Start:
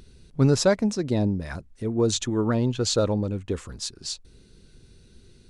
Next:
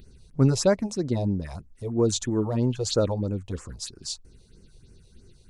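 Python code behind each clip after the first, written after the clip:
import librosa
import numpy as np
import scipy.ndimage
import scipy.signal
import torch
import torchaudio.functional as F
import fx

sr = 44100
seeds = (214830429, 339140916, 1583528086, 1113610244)

y = fx.phaser_stages(x, sr, stages=4, low_hz=240.0, high_hz=3800.0, hz=3.1, feedback_pct=5)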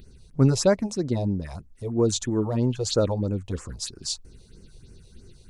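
y = fx.rider(x, sr, range_db=4, speed_s=2.0)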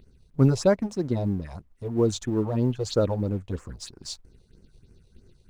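y = fx.law_mismatch(x, sr, coded='A')
y = fx.high_shelf(y, sr, hz=4000.0, db=-9.0)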